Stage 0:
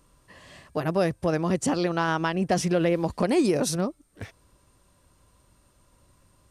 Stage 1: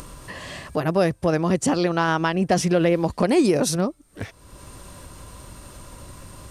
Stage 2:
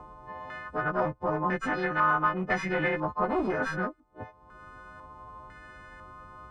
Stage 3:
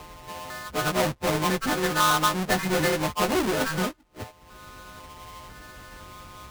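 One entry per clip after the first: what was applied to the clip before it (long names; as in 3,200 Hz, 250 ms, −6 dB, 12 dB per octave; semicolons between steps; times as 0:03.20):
upward compression, threshold −30 dBFS; level +4 dB
every partial snapped to a pitch grid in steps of 3 semitones; asymmetric clip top −22.5 dBFS; low-pass on a step sequencer 2 Hz 920–1,900 Hz; level −9 dB
each half-wave held at its own peak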